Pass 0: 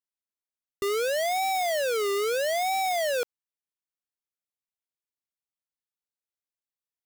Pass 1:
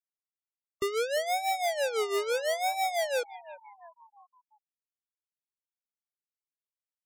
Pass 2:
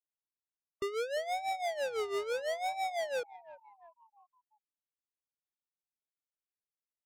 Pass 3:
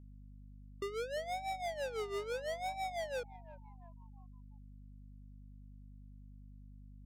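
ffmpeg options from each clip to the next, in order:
ffmpeg -i in.wav -filter_complex "[0:a]tremolo=f=6:d=0.7,asplit=6[link_01][link_02][link_03][link_04][link_05][link_06];[link_02]adelay=343,afreqshift=85,volume=-17dB[link_07];[link_03]adelay=686,afreqshift=170,volume=-22.2dB[link_08];[link_04]adelay=1029,afreqshift=255,volume=-27.4dB[link_09];[link_05]adelay=1372,afreqshift=340,volume=-32.6dB[link_10];[link_06]adelay=1715,afreqshift=425,volume=-37.8dB[link_11];[link_01][link_07][link_08][link_09][link_10][link_11]amix=inputs=6:normalize=0,afftfilt=real='re*gte(hypot(re,im),0.01)':imag='im*gte(hypot(re,im),0.01)':win_size=1024:overlap=0.75" out.wav
ffmpeg -i in.wav -af "adynamicsmooth=sensitivity=4:basefreq=1500,volume=-5dB" out.wav
ffmpeg -i in.wav -af "aeval=exprs='val(0)+0.00398*(sin(2*PI*50*n/s)+sin(2*PI*2*50*n/s)/2+sin(2*PI*3*50*n/s)/3+sin(2*PI*4*50*n/s)/4+sin(2*PI*5*50*n/s)/5)':channel_layout=same,volume=-4.5dB" out.wav

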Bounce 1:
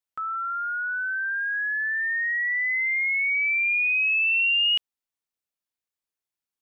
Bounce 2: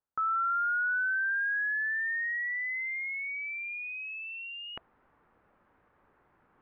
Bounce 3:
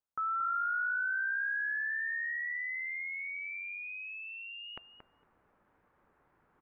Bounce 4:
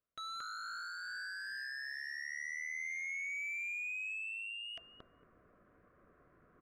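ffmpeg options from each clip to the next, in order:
ffmpeg -i in.wav -af "areverse,acompressor=mode=upward:threshold=-32dB:ratio=2.5,areverse,lowpass=frequency=1500:width=0.5412,lowpass=frequency=1500:width=1.3066,bandreject=frequency=670:width=17,volume=2dB" out.wav
ffmpeg -i in.wav -filter_complex "[0:a]asplit=2[link_01][link_02];[link_02]adelay=228,lowpass=frequency=1700:poles=1,volume=-6.5dB,asplit=2[link_03][link_04];[link_04]adelay=228,lowpass=frequency=1700:poles=1,volume=0.16,asplit=2[link_05][link_06];[link_06]adelay=228,lowpass=frequency=1700:poles=1,volume=0.16[link_07];[link_01][link_03][link_05][link_07]amix=inputs=4:normalize=0,volume=-4dB" out.wav
ffmpeg -i in.wav -af "aeval=exprs='0.0112*(abs(mod(val(0)/0.0112+3,4)-2)-1)':channel_layout=same,adynamicsmooth=sensitivity=6:basefreq=2000,asuperstop=centerf=860:order=4:qfactor=2.9,volume=6.5dB" out.wav

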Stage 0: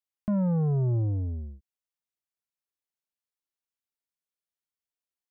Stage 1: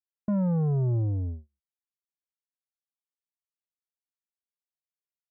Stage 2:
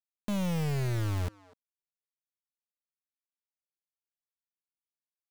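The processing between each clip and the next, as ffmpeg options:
ffmpeg -i in.wav -af "agate=range=-40dB:threshold=-33dB:ratio=16:detection=peak" out.wav
ffmpeg -i in.wav -filter_complex "[0:a]acrusher=bits=4:mix=0:aa=0.000001,asplit=2[link_01][link_02];[link_02]adelay=250,highpass=300,lowpass=3400,asoftclip=type=hard:threshold=-31.5dB,volume=-17dB[link_03];[link_01][link_03]amix=inputs=2:normalize=0,aeval=exprs='(tanh(22.4*val(0)+0.45)-tanh(0.45))/22.4':channel_layout=same,volume=-1dB" out.wav

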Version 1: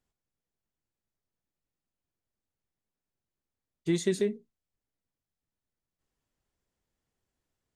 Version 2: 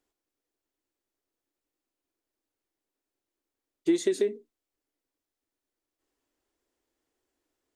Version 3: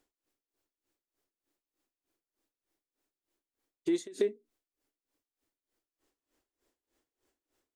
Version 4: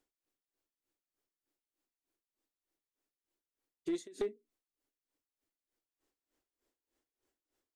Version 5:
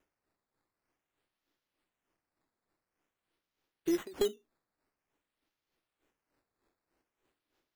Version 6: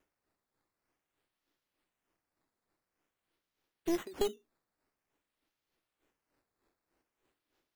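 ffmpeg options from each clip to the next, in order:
ffmpeg -i in.wav -af "acompressor=threshold=-27dB:ratio=6,lowshelf=frequency=230:width_type=q:width=3:gain=-9,volume=3dB" out.wav
ffmpeg -i in.wav -af "acompressor=threshold=-29dB:ratio=6,aeval=exprs='val(0)*pow(10,-20*(0.5-0.5*cos(2*PI*3.3*n/s))/20)':channel_layout=same,volume=5.5dB" out.wav
ffmpeg -i in.wav -af "aeval=exprs='clip(val(0),-1,0.0631)':channel_layout=same,volume=-6dB" out.wav
ffmpeg -i in.wav -af "acrusher=samples=10:mix=1:aa=0.000001:lfo=1:lforange=10:lforate=0.49,volume=5dB" out.wav
ffmpeg -i in.wav -af "aeval=exprs='clip(val(0),-1,0.0251)':channel_layout=same" out.wav

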